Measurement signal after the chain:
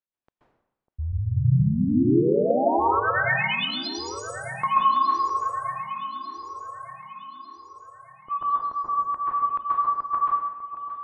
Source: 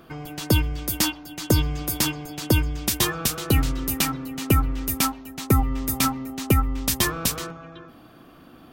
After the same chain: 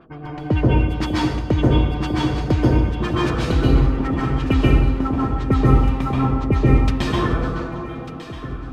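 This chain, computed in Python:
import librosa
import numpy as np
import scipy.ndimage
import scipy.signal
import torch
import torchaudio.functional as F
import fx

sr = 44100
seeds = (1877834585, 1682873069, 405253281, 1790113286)

p1 = fx.filter_lfo_lowpass(x, sr, shape='sine', hz=8.9, low_hz=410.0, high_hz=3100.0, q=0.81)
p2 = p1 + fx.echo_alternate(p1, sr, ms=598, hz=1000.0, feedback_pct=65, wet_db=-9.0, dry=0)
y = fx.rev_plate(p2, sr, seeds[0], rt60_s=0.86, hf_ratio=0.85, predelay_ms=120, drr_db=-6.0)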